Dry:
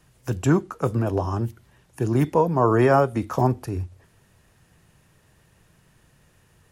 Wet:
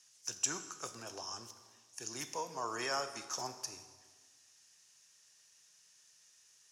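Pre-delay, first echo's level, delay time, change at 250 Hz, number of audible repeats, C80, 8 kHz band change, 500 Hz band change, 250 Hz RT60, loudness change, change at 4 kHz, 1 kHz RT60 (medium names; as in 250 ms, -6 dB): 7 ms, no echo, no echo, -27.5 dB, no echo, 12.0 dB, no reading, -23.0 dB, 1.7 s, -17.5 dB, +3.5 dB, 1.5 s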